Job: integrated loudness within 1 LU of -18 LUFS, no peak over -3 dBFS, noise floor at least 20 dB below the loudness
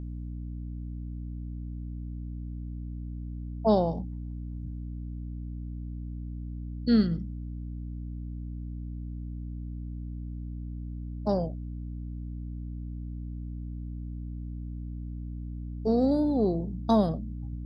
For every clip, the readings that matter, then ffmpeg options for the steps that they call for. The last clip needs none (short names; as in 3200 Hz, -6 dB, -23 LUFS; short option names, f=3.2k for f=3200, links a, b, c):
hum 60 Hz; harmonics up to 300 Hz; hum level -34 dBFS; loudness -33.0 LUFS; peak -11.0 dBFS; loudness target -18.0 LUFS
-> -af "bandreject=f=60:t=h:w=4,bandreject=f=120:t=h:w=4,bandreject=f=180:t=h:w=4,bandreject=f=240:t=h:w=4,bandreject=f=300:t=h:w=4"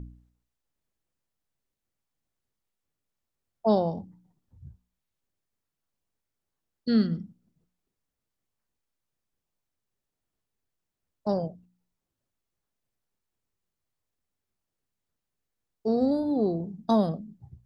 hum none; loudness -27.5 LUFS; peak -11.0 dBFS; loudness target -18.0 LUFS
-> -af "volume=9.5dB,alimiter=limit=-3dB:level=0:latency=1"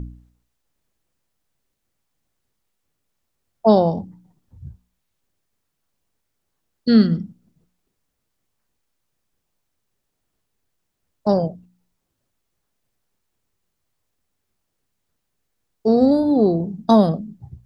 loudness -18.0 LUFS; peak -3.0 dBFS; noise floor -76 dBFS